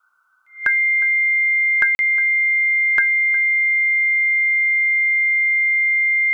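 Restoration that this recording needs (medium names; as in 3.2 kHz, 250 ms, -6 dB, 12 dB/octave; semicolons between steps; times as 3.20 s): band-stop 2.1 kHz, Q 30; interpolate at 1.95 s, 41 ms; noise print and reduce 30 dB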